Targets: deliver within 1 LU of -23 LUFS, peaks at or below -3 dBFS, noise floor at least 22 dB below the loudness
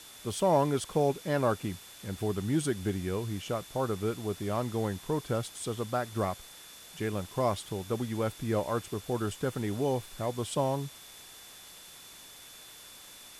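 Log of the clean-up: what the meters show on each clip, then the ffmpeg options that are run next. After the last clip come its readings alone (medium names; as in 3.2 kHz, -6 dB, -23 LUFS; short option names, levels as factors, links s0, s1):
steady tone 3.5 kHz; tone level -54 dBFS; noise floor -50 dBFS; noise floor target -54 dBFS; loudness -32.0 LUFS; peak level -14.5 dBFS; loudness target -23.0 LUFS
-> -af "bandreject=f=3500:w=30"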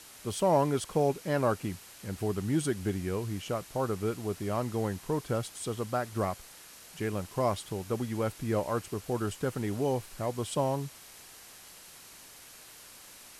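steady tone not found; noise floor -52 dBFS; noise floor target -54 dBFS
-> -af "afftdn=nr=6:nf=-52"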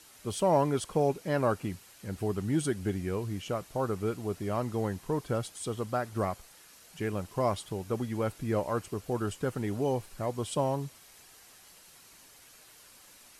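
noise floor -56 dBFS; loudness -32.0 LUFS; peak level -14.5 dBFS; loudness target -23.0 LUFS
-> -af "volume=2.82"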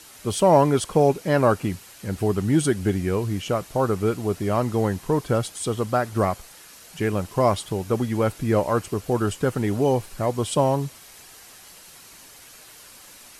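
loudness -23.0 LUFS; peak level -5.5 dBFS; noise floor -47 dBFS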